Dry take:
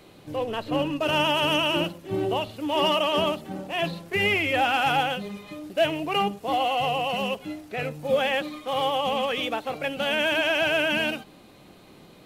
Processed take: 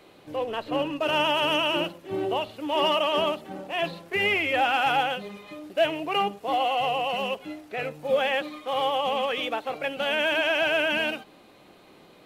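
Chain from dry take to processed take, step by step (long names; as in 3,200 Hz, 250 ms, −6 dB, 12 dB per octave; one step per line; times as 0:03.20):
bass and treble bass −9 dB, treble −5 dB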